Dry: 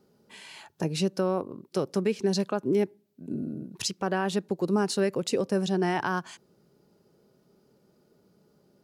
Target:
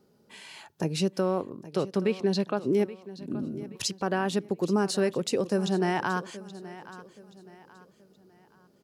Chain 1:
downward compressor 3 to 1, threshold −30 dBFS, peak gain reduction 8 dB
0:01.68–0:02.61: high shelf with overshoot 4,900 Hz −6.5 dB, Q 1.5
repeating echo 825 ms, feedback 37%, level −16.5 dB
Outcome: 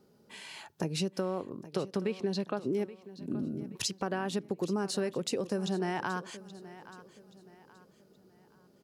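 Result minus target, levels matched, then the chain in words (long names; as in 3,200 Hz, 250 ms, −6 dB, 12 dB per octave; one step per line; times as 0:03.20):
downward compressor: peak gain reduction +8 dB
0:01.68–0:02.61: high shelf with overshoot 4,900 Hz −6.5 dB, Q 1.5
repeating echo 825 ms, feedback 37%, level −16.5 dB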